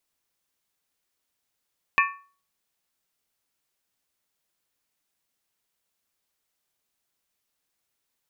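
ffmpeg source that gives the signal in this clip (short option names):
-f lavfi -i "aevalsrc='0.141*pow(10,-3*t/0.4)*sin(2*PI*1120*t)+0.126*pow(10,-3*t/0.317)*sin(2*PI*1785.3*t)+0.112*pow(10,-3*t/0.274)*sin(2*PI*2392.3*t)+0.1*pow(10,-3*t/0.264)*sin(2*PI*2571.5*t)':d=0.63:s=44100"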